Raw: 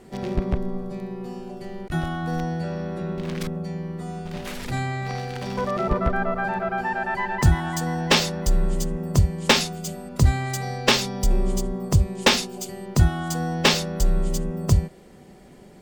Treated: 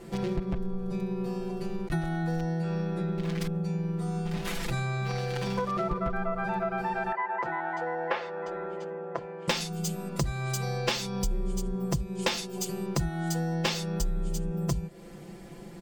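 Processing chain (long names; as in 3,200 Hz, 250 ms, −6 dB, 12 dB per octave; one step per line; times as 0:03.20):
0:07.12–0:09.48: Chebyshev band-pass filter 500–1,700 Hz, order 2
comb filter 5.9 ms, depth 90%
downward compressor 4 to 1, threshold −28 dBFS, peak gain reduction 15.5 dB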